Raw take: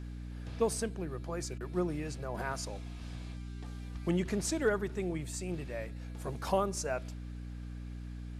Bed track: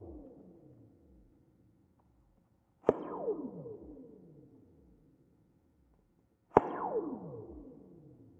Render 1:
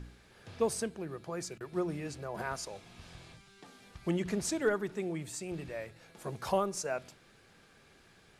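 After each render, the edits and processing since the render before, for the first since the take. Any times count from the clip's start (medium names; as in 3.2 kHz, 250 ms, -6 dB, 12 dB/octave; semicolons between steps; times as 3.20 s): de-hum 60 Hz, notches 5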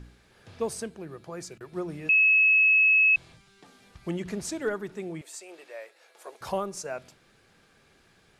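2.09–3.16 s: bleep 2.58 kHz -16.5 dBFS; 5.21–6.41 s: high-pass 440 Hz 24 dB/octave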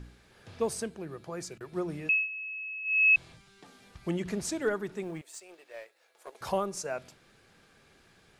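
2.00–3.12 s: dip -19 dB, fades 0.28 s; 5.03–6.35 s: companding laws mixed up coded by A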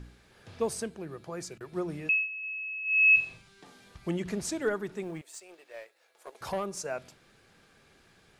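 2.39–3.97 s: flutter echo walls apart 7.5 m, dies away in 0.33 s; 6.39–6.80 s: valve stage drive 25 dB, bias 0.2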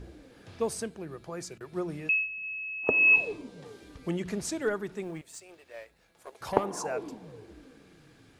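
add bed track -1.5 dB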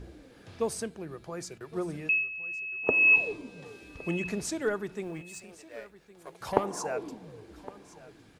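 feedback delay 1113 ms, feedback 25%, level -19 dB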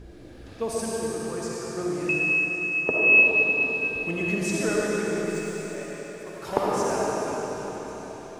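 algorithmic reverb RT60 4.5 s, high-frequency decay 0.95×, pre-delay 25 ms, DRR -6 dB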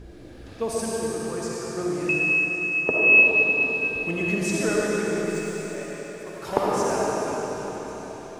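trim +1.5 dB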